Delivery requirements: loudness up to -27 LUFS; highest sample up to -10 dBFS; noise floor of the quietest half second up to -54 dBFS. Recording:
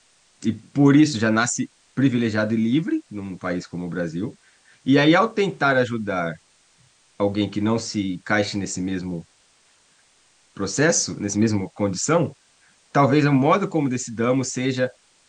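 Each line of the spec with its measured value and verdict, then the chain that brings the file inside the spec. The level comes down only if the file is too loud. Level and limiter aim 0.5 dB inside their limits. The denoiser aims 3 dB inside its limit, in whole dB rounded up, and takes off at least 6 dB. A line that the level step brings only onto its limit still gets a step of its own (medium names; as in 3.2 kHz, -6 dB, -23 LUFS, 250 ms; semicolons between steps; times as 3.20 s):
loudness -21.5 LUFS: fail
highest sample -6.0 dBFS: fail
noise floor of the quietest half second -59 dBFS: pass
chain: trim -6 dB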